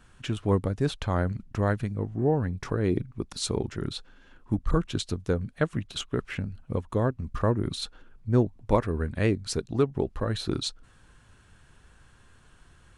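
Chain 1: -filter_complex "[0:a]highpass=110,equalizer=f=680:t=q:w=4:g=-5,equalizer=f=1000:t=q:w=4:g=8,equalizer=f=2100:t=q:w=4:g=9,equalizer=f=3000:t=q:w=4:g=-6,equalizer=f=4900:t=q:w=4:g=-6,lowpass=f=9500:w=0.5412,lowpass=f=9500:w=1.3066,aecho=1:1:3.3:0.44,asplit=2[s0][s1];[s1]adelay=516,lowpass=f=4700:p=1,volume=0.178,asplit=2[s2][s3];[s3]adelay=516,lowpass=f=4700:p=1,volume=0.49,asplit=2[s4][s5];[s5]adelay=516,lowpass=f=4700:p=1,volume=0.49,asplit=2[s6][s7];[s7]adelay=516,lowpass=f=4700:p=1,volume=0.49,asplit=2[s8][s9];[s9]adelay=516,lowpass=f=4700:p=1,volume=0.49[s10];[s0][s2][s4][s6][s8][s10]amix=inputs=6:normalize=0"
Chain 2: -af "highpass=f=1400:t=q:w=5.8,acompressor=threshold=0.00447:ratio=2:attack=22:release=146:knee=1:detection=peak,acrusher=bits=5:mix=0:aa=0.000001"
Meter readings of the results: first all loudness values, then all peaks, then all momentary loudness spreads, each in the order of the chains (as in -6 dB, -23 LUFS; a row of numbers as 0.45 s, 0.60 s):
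-29.5 LUFS, -40.5 LUFS; -5.5 dBFS, -18.0 dBFS; 10 LU, 7 LU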